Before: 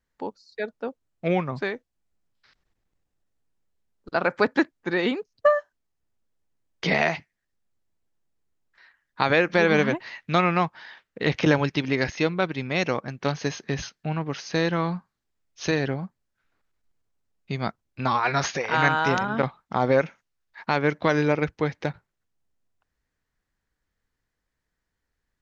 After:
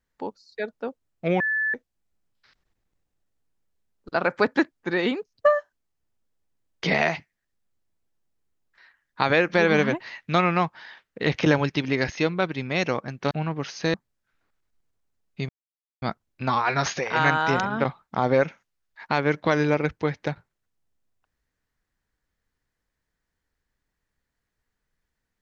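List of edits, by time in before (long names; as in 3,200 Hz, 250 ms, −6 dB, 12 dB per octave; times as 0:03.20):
0:01.40–0:01.74: beep over 1,740 Hz −21.5 dBFS
0:13.31–0:14.01: remove
0:14.64–0:16.05: remove
0:17.60: splice in silence 0.53 s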